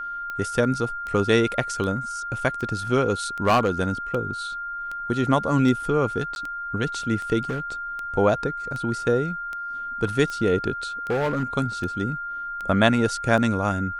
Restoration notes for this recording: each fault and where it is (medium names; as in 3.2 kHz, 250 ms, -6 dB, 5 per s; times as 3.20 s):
tick 78 rpm -20 dBFS
whine 1.4 kHz -29 dBFS
3.45–3.69 s: clipped -13.5 dBFS
6.35–6.36 s: dropout 11 ms
7.49–7.72 s: clipped -23 dBFS
11.10–11.44 s: clipped -19.5 dBFS